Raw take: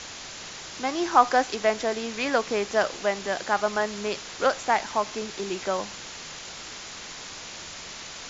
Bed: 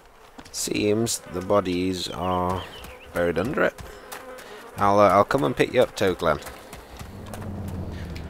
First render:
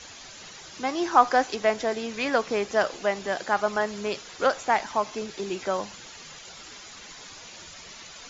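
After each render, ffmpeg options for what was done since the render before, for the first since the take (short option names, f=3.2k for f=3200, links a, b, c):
-af "afftdn=nr=10:nf=-40"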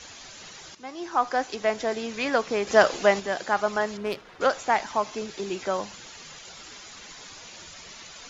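-filter_complex "[0:a]asettb=1/sr,asplit=3[a][b][c];[a]atrim=end=3.974[d];[b]atrim=start=3.97:end=4.41,asetpts=PTS-STARTPTS,afade=t=in:d=0.004:c=qsin,afade=t=out:st=0.436:d=0.004:c=qsin,adynamicsmooth=sensitivity=4:basefreq=1.8k[e];[c]atrim=start=4.406[f];[d][e]acrossfade=d=0.004:c1=hsin:c2=qsin[g];[g][f]acrossfade=d=0.004:c1=qsin:c2=hsin,asplit=4[h][i][j][k];[h]atrim=end=0.75,asetpts=PTS-STARTPTS,afade=t=out:st=0.746:d=0.004:c=hsin:silence=0.211349[l];[i]atrim=start=0.75:end=2.672,asetpts=PTS-STARTPTS,afade=t=in:d=1.2:silence=0.211349[m];[j]atrim=start=2.668:end=3.202,asetpts=PTS-STARTPTS,volume=6dB[n];[k]atrim=start=3.198[o];[l][m]concat=n=2:v=0:a=1[p];[p][n]acrossfade=d=0.004:c1=hsin:c2=hsin[q];[q][o]acrossfade=d=0.004:c1=hsin:c2=hsin"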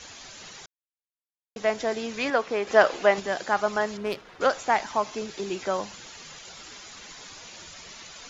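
-filter_complex "[0:a]asettb=1/sr,asplit=3[a][b][c];[a]atrim=end=2.304[d];[b]atrim=start=2.3:end=3.18,asetpts=PTS-STARTPTS,afade=t=in:d=0.004:c=qsin,afade=t=out:st=0.876:d=0.004:c=qsin,bass=f=250:g=-7,treble=f=4k:g=-8[e];[c]atrim=start=3.176[f];[d][e]acrossfade=d=0.004:c1=hsin:c2=qsin[g];[g][f]acrossfade=d=0.004:c1=qsin:c2=hsin,asplit=3[h][i][j];[h]atrim=end=0.66,asetpts=PTS-STARTPTS,afade=t=out:st=0.656:d=0.004:c=hsin[k];[i]atrim=start=0.66:end=1.56,asetpts=PTS-STARTPTS,volume=0[l];[j]atrim=start=1.56,asetpts=PTS-STARTPTS,afade=t=in:d=0.004:c=hsin[m];[k][l][m]concat=n=3:v=0:a=1"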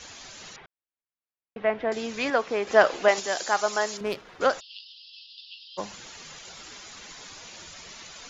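-filter_complex "[0:a]asettb=1/sr,asplit=3[a][b][c];[a]atrim=end=0.564[d];[b]atrim=start=0.56:end=1.92,asetpts=PTS-STARTPTS,afade=t=in:d=0.004:c=qsin,afade=t=out:st=1.356:d=0.004:c=qsin,lowpass=f=2.7k:w=0.5412,lowpass=f=2.7k:w=1.3066[e];[c]atrim=start=1.916[f];[d][e]acrossfade=d=0.004:c1=hsin:c2=qsin[g];[g][f]acrossfade=d=0.004:c1=qsin:c2=hsin,asettb=1/sr,asplit=3[h][i][j];[h]atrim=end=3.084[k];[i]atrim=start=3.08:end=4.01,asetpts=PTS-STARTPTS,afade=t=in:d=0.004:c=qsin,afade=t=out:st=0.926:d=0.004:c=qsin,bass=f=250:g=-12,treble=f=4k:g=12[l];[j]atrim=start=4.006[m];[k][l]acrossfade=d=0.004:c1=hsin:c2=qsin[n];[n][m]acrossfade=d=0.004:c1=qsin:c2=hsin,asplit=3[o][p][q];[o]afade=t=out:st=4.59:d=0.02[r];[p]asuperpass=centerf=3800:order=20:qfactor=1.5,afade=t=in:st=4.59:d=0.02,afade=t=out:st=5.77:d=0.02[s];[q]afade=t=in:st=5.77:d=0.02[t];[r][s][t]amix=inputs=3:normalize=0"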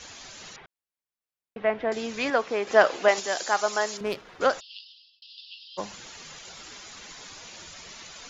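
-filter_complex "[0:a]asettb=1/sr,asplit=3[a][b][c];[a]atrim=end=2.474[d];[b]atrim=start=2.47:end=4.01,asetpts=PTS-STARTPTS,afade=t=in:d=0.004:c=qsin,afade=t=out:st=1.536:d=0.004:c=qsin,lowshelf=f=76:g=-11[e];[c]atrim=start=4.006[f];[d][e]acrossfade=d=0.004:c1=hsin:c2=qsin[g];[g][f]acrossfade=d=0.004:c1=qsin:c2=hsin,asplit=2[h][i];[h]atrim=end=5.22,asetpts=PTS-STARTPTS,afade=t=out:st=4.78:d=0.44[j];[i]atrim=start=5.22,asetpts=PTS-STARTPTS,afade=t=in:d=0.004:c=hsin[k];[j][k]concat=n=2:v=0:a=1"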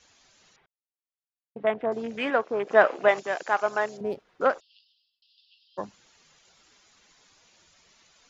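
-af "afwtdn=0.0224"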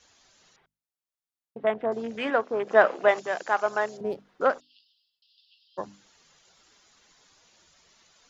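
-af "equalizer=f=2.4k:t=o:w=0.44:g=-3,bandreject=f=50:t=h:w=6,bandreject=f=100:t=h:w=6,bandreject=f=150:t=h:w=6,bandreject=f=200:t=h:w=6,bandreject=f=250:t=h:w=6,bandreject=f=300:t=h:w=6"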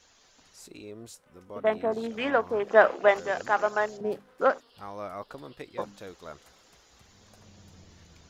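-filter_complex "[1:a]volume=-21.5dB[a];[0:a][a]amix=inputs=2:normalize=0"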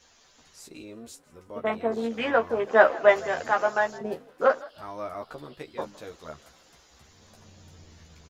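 -filter_complex "[0:a]asplit=2[a][b];[b]adelay=13,volume=-3.5dB[c];[a][c]amix=inputs=2:normalize=0,asplit=3[d][e][f];[e]adelay=161,afreqshift=49,volume=-21.5dB[g];[f]adelay=322,afreqshift=98,volume=-30.9dB[h];[d][g][h]amix=inputs=3:normalize=0"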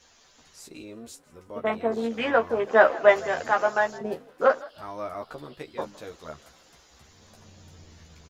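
-af "volume=1dB,alimiter=limit=-3dB:level=0:latency=1"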